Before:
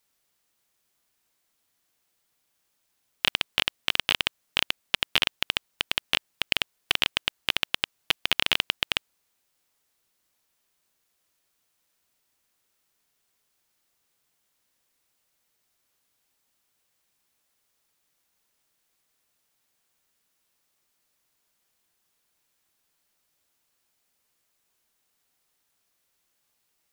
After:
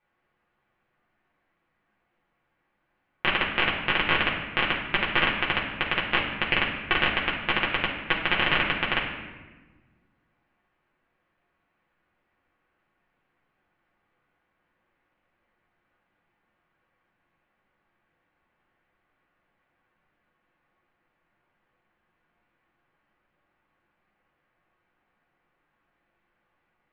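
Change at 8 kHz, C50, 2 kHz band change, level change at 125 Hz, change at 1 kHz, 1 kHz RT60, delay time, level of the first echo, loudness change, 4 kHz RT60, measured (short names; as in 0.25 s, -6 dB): under -30 dB, 4.5 dB, +5.5 dB, +10.0 dB, +8.5 dB, 1.2 s, none, none, +1.5 dB, 0.85 s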